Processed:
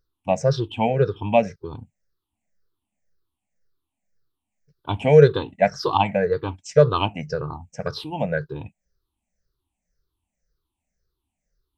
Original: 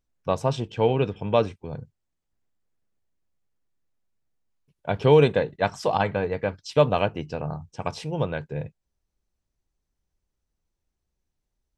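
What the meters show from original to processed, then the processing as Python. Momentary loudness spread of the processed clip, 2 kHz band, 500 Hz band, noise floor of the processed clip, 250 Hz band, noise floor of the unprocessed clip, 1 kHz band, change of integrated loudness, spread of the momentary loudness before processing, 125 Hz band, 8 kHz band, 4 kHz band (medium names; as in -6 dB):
17 LU, +2.0 dB, +3.0 dB, -83 dBFS, +2.0 dB, -82 dBFS, +3.5 dB, +3.5 dB, 16 LU, +3.0 dB, no reading, +2.5 dB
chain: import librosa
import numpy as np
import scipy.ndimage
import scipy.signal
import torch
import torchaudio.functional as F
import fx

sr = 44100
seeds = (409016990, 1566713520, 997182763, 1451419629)

y = fx.spec_ripple(x, sr, per_octave=0.58, drift_hz=-1.9, depth_db=23)
y = y * 10.0 ** (-2.5 / 20.0)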